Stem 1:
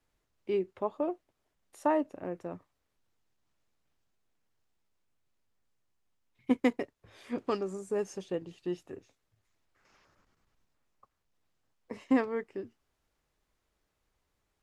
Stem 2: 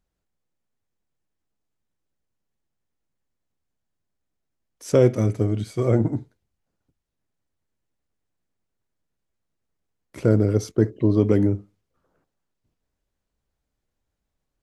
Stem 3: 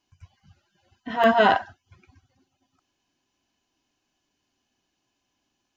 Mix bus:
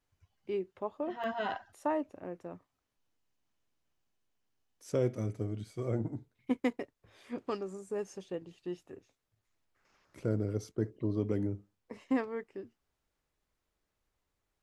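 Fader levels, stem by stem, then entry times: -4.5 dB, -14.0 dB, -17.5 dB; 0.00 s, 0.00 s, 0.00 s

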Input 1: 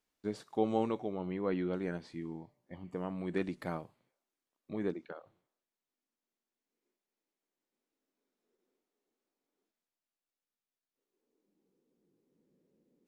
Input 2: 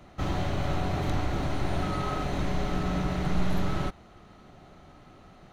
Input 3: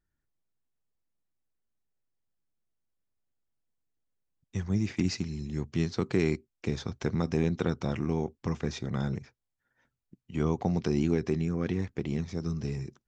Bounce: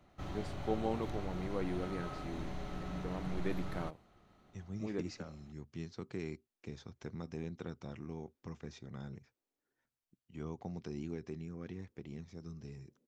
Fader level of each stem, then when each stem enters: -4.5 dB, -13.5 dB, -15.0 dB; 0.10 s, 0.00 s, 0.00 s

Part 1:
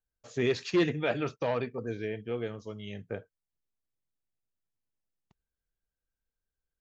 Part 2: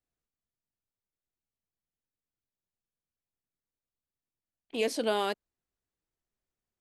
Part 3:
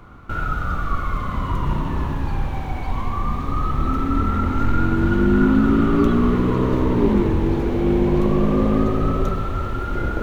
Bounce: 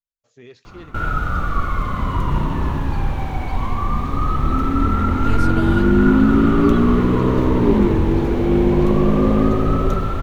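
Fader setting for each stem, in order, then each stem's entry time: -15.0 dB, -4.0 dB, +2.5 dB; 0.00 s, 0.50 s, 0.65 s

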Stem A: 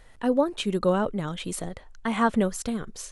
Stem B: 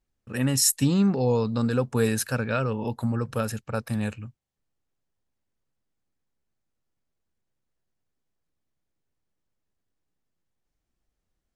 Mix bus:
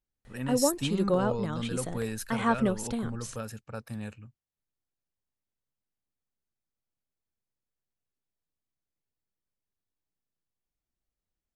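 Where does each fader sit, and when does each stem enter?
-3.5 dB, -10.0 dB; 0.25 s, 0.00 s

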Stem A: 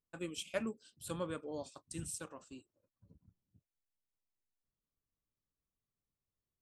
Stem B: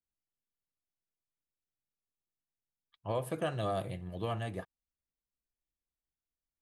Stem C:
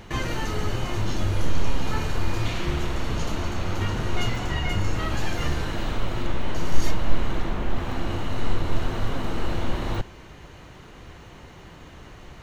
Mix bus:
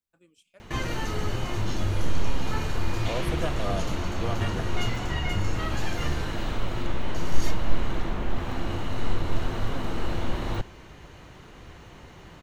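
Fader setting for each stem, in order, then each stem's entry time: -19.0 dB, +2.0 dB, -2.0 dB; 0.00 s, 0.00 s, 0.60 s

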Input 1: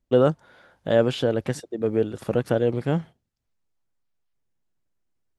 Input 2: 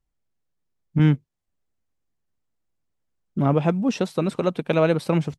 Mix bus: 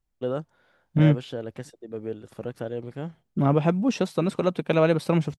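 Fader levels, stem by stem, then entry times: -10.5 dB, -1.0 dB; 0.10 s, 0.00 s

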